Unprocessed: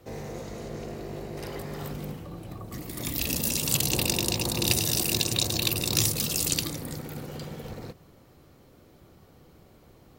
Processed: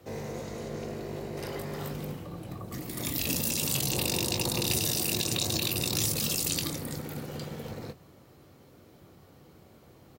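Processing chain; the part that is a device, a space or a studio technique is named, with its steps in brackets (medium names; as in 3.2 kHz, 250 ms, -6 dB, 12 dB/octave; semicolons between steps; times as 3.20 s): high-pass 69 Hz; doubling 22 ms -10.5 dB; soft clipper into limiter (saturation -10 dBFS, distortion -24 dB; peak limiter -17 dBFS, peak gain reduction 6 dB)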